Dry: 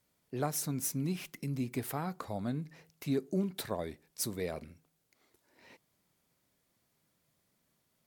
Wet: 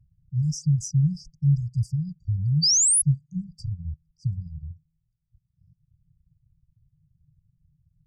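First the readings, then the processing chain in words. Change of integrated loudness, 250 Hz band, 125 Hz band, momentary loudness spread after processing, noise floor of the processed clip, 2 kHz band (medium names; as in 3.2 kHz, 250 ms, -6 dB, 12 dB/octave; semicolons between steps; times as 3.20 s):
+13.0 dB, +5.0 dB, +16.5 dB, 18 LU, -76 dBFS, under -40 dB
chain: resonances exaggerated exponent 1.5; reverb removal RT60 0.86 s; RIAA curve playback; level-controlled noise filter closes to 660 Hz, open at -23 dBFS; high-order bell 5.1 kHz +13.5 dB; painted sound rise, 1.61–3.02 s, 470–11000 Hz -28 dBFS; brick-wall FIR band-stop 170–4600 Hz; trim +9 dB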